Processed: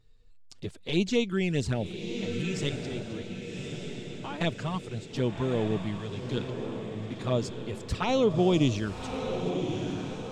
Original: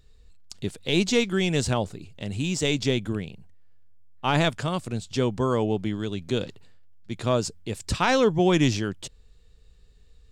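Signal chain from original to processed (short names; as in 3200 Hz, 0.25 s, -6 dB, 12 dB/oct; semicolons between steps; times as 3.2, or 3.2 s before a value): high shelf 6500 Hz -9.5 dB; 2.69–4.41 level quantiser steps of 16 dB; envelope flanger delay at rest 9.2 ms, full sweep at -18.5 dBFS; on a send: diffused feedback echo 1.16 s, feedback 55%, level -6.5 dB; on the sum: gain -2.5 dB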